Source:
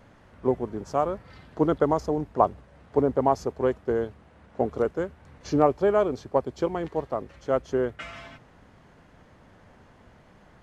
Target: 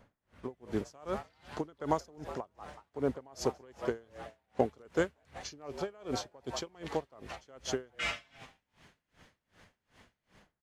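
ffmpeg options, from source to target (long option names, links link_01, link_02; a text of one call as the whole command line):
ffmpeg -i in.wav -filter_complex "[0:a]acrossover=split=1900[link_01][link_02];[link_02]dynaudnorm=framelen=150:gausssize=5:maxgain=12dB[link_03];[link_01][link_03]amix=inputs=2:normalize=0,asplit=6[link_04][link_05][link_06][link_07][link_08][link_09];[link_05]adelay=186,afreqshift=100,volume=-20dB[link_10];[link_06]adelay=372,afreqshift=200,volume=-24.3dB[link_11];[link_07]adelay=558,afreqshift=300,volume=-28.6dB[link_12];[link_08]adelay=744,afreqshift=400,volume=-32.9dB[link_13];[link_09]adelay=930,afreqshift=500,volume=-37.2dB[link_14];[link_04][link_10][link_11][link_12][link_13][link_14]amix=inputs=6:normalize=0,agate=range=-8dB:threshold=-46dB:ratio=16:detection=peak,acompressor=threshold=-24dB:ratio=6,aeval=exprs='val(0)*pow(10,-30*(0.5-0.5*cos(2*PI*2.6*n/s))/20)':channel_layout=same,volume=1.5dB" out.wav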